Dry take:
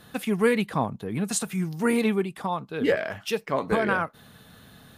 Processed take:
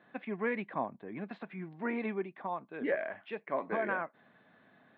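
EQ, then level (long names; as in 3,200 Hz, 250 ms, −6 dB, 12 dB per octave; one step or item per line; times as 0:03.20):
high-frequency loss of the air 420 metres
loudspeaker in its box 400–3,000 Hz, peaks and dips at 460 Hz −9 dB, 850 Hz −5 dB, 1,300 Hz −9 dB, 2,900 Hz −8 dB
−1.5 dB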